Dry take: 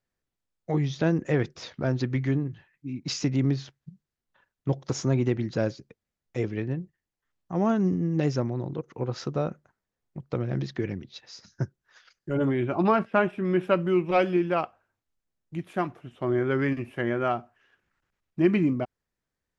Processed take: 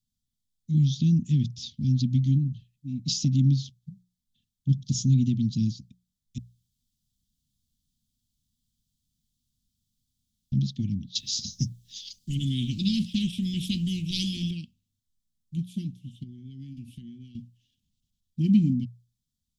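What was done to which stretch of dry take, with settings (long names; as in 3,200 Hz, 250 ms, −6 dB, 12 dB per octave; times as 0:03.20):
0:06.38–0:10.52: fill with room tone
0:11.15–0:14.51: every bin compressed towards the loudest bin 2 to 1
0:16.23–0:17.35: downward compressor 8 to 1, threshold −36 dBFS
whole clip: Chebyshev band-stop filter 240–3,300 Hz, order 4; mains-hum notches 60/120/180 Hz; dynamic equaliser 180 Hz, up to +3 dB, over −36 dBFS, Q 1.4; level +4.5 dB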